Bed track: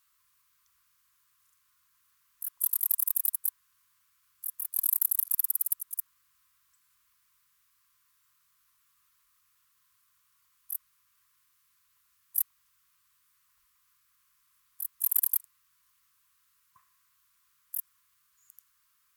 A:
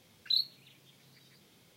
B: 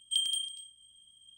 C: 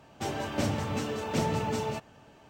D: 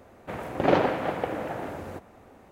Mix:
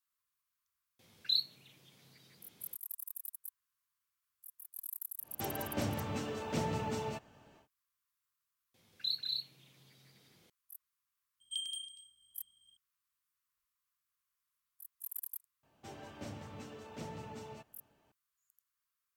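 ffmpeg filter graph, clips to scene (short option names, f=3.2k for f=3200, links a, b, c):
-filter_complex "[1:a]asplit=2[a][b];[3:a]asplit=2[c][d];[0:a]volume=-17dB[e];[b]aecho=1:1:186.6|253.6:0.562|0.708[f];[a]atrim=end=1.76,asetpts=PTS-STARTPTS,volume=-2dB,afade=t=in:d=0.004:c=hsin,afade=t=out:st=1.756:d=0.004:c=hsin,adelay=990[g];[c]atrim=end=2.49,asetpts=PTS-STARTPTS,volume=-6.5dB,afade=t=in:d=0.1,afade=t=out:st=2.39:d=0.1,adelay=5190[h];[f]atrim=end=1.76,asetpts=PTS-STARTPTS,volume=-6.5dB,afade=t=in:d=0.004:c=hsin,afade=t=out:st=1.756:d=0.004:c=hsin,adelay=385434S[i];[2:a]atrim=end=1.37,asetpts=PTS-STARTPTS,volume=-9.5dB,afade=t=in:d=0.004:c=hsin,afade=t=out:st=1.366:d=0.004:c=hsin,adelay=11400[j];[d]atrim=end=2.49,asetpts=PTS-STARTPTS,volume=-16.5dB,afade=t=in:d=0.004:c=hsin,afade=t=out:st=2.486:d=0.004:c=hsin,adelay=15630[k];[e][g][h][i][j][k]amix=inputs=6:normalize=0"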